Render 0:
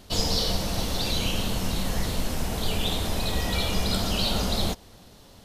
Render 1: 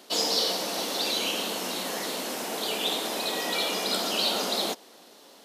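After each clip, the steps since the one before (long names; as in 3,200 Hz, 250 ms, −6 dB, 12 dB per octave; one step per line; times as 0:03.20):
high-pass filter 280 Hz 24 dB per octave
level +1.5 dB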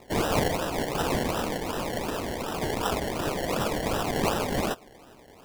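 sample-and-hold swept by an LFO 28×, swing 60% 2.7 Hz
level +1 dB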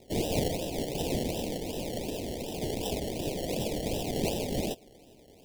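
Butterworth band-reject 1,300 Hz, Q 0.67
level −2.5 dB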